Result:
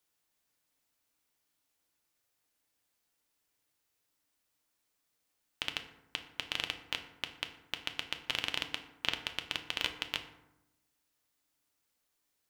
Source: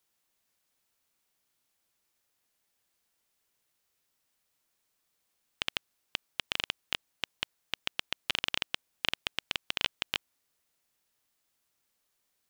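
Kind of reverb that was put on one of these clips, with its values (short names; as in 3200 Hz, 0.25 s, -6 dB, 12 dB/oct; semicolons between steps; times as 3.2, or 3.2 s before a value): FDN reverb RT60 0.92 s, low-frequency decay 1.3×, high-frequency decay 0.5×, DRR 5.5 dB; gain -3 dB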